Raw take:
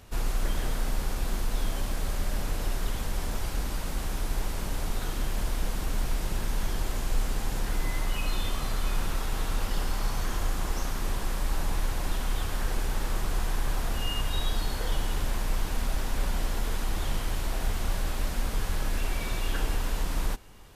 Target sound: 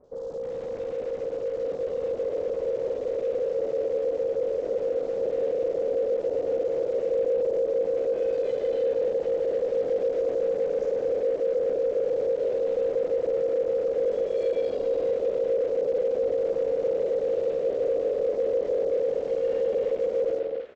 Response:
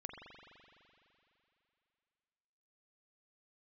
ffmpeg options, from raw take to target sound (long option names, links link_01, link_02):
-filter_complex "[0:a]lowpass=6000[link_01];[1:a]atrim=start_sample=2205,afade=type=out:start_time=0.36:duration=0.01,atrim=end_sample=16317[link_02];[link_01][link_02]afir=irnorm=-1:irlink=0,aresample=16000,asoftclip=type=hard:threshold=-33dB,aresample=44100,asubboost=boost=3.5:cutoff=210,aeval=exprs='val(0)*sin(2*PI*500*n/s)':channel_layout=same,tiltshelf=frequency=1100:gain=3.5,acrossover=split=1200|3900[link_03][link_04][link_05];[link_05]adelay=40[link_06];[link_04]adelay=310[link_07];[link_03][link_07][link_06]amix=inputs=3:normalize=0"